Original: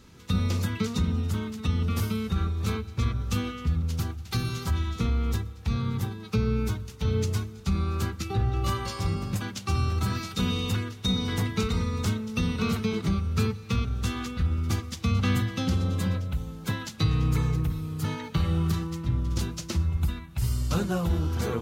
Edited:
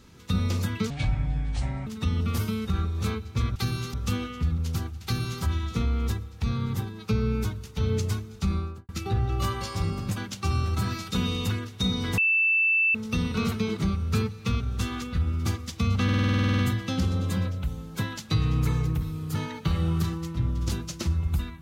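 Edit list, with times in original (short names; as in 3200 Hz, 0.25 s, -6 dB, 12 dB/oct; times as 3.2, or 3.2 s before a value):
0.9–1.49 speed 61%
4.28–4.66 copy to 3.18
7.74–8.13 studio fade out
11.42–12.19 bleep 2650 Hz -19 dBFS
15.28 stutter 0.05 s, 12 plays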